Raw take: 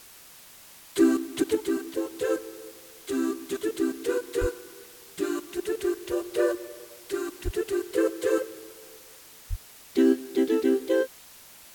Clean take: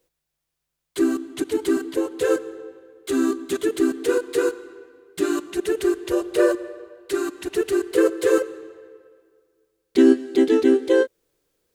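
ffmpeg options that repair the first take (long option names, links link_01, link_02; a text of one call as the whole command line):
ffmpeg -i in.wav -filter_complex "[0:a]asplit=3[link_01][link_02][link_03];[link_01]afade=type=out:start_time=4.4:duration=0.02[link_04];[link_02]highpass=frequency=140:width=0.5412,highpass=frequency=140:width=1.3066,afade=type=in:start_time=4.4:duration=0.02,afade=type=out:start_time=4.52:duration=0.02[link_05];[link_03]afade=type=in:start_time=4.52:duration=0.02[link_06];[link_04][link_05][link_06]amix=inputs=3:normalize=0,asplit=3[link_07][link_08][link_09];[link_07]afade=type=out:start_time=7.44:duration=0.02[link_10];[link_08]highpass=frequency=140:width=0.5412,highpass=frequency=140:width=1.3066,afade=type=in:start_time=7.44:duration=0.02,afade=type=out:start_time=7.56:duration=0.02[link_11];[link_09]afade=type=in:start_time=7.56:duration=0.02[link_12];[link_10][link_11][link_12]amix=inputs=3:normalize=0,asplit=3[link_13][link_14][link_15];[link_13]afade=type=out:start_time=9.49:duration=0.02[link_16];[link_14]highpass=frequency=140:width=0.5412,highpass=frequency=140:width=1.3066,afade=type=in:start_time=9.49:duration=0.02,afade=type=out:start_time=9.61:duration=0.02[link_17];[link_15]afade=type=in:start_time=9.61:duration=0.02[link_18];[link_16][link_17][link_18]amix=inputs=3:normalize=0,afwtdn=0.0035,asetnsamples=nb_out_samples=441:pad=0,asendcmd='1.55 volume volume 6.5dB',volume=0dB" out.wav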